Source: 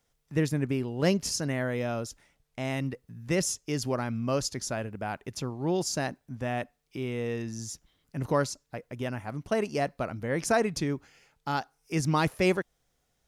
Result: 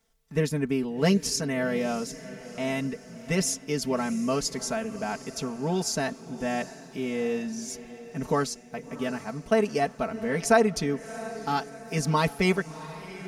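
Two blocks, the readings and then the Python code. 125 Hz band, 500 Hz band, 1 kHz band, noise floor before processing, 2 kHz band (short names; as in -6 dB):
-0.5 dB, +3.0 dB, +3.5 dB, -76 dBFS, +3.0 dB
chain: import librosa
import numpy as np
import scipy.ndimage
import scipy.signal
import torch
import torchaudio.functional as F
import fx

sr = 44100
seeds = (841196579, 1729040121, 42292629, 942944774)

y = x + 0.91 * np.pad(x, (int(4.5 * sr / 1000.0), 0))[:len(x)]
y = fx.echo_diffused(y, sr, ms=696, feedback_pct=51, wet_db=-15.0)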